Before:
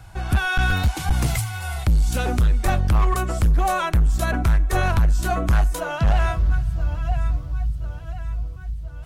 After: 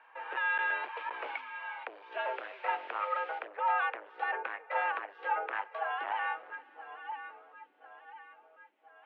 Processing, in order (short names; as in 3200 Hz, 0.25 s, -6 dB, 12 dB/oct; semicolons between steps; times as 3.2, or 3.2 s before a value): 2.23–3.38 added noise blue -29 dBFS; mistuned SSB +150 Hz 370–2600 Hz; gain -6.5 dB